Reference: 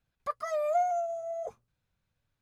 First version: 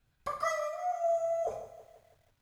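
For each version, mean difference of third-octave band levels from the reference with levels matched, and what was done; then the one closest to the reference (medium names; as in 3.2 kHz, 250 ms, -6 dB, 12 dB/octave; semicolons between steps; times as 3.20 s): 5.5 dB: peaking EQ 78 Hz +3.5 dB 2.4 oct; compressor with a negative ratio -33 dBFS, ratio -0.5; gated-style reverb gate 180 ms falling, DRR 0 dB; bit-crushed delay 163 ms, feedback 55%, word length 10-bit, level -13 dB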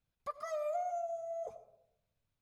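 1.5 dB: peaking EQ 1.6 kHz -5 dB 0.44 oct; compression, threshold -29 dBFS, peak gain reduction 6 dB; algorithmic reverb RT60 0.81 s, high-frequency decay 0.35×, pre-delay 50 ms, DRR 13 dB; trim -5 dB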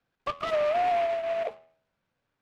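11.0 dB: three-band isolator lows -16 dB, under 190 Hz, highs -18 dB, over 3.1 kHz; peak limiter -28 dBFS, peak gain reduction 8.5 dB; de-hum 81.26 Hz, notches 29; delay time shaken by noise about 1.4 kHz, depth 0.05 ms; trim +7 dB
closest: second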